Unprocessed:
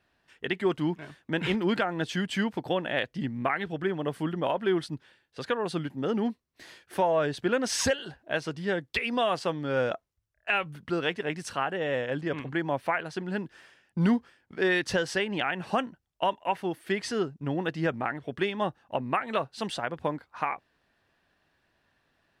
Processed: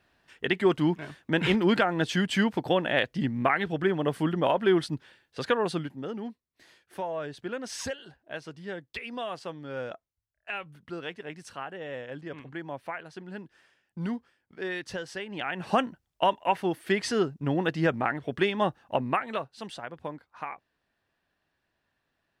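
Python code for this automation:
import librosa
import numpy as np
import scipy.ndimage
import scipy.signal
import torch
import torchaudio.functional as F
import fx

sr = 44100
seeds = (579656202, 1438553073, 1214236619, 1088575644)

y = fx.gain(x, sr, db=fx.line((5.62, 3.5), (6.16, -8.5), (15.25, -8.5), (15.74, 3.0), (19.03, 3.0), (19.55, -7.0)))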